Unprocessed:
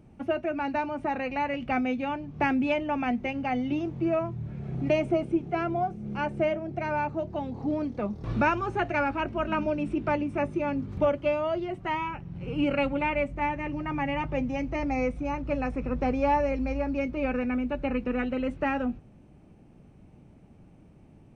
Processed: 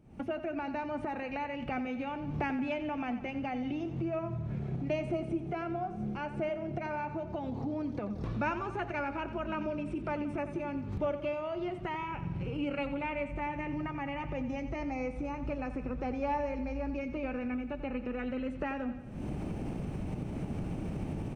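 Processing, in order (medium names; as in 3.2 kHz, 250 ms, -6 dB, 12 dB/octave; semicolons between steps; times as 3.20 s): recorder AGC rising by 71 dB/s; on a send: feedback delay 89 ms, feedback 56%, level -12 dB; on the sum: trim -8.5 dB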